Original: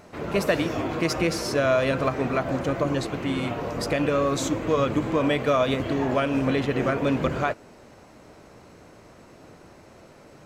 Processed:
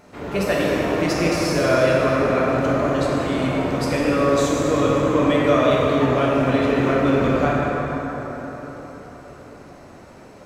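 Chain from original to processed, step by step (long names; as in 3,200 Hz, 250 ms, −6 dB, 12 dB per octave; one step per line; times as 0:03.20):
dense smooth reverb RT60 4.6 s, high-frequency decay 0.5×, DRR −5.5 dB
level −1.5 dB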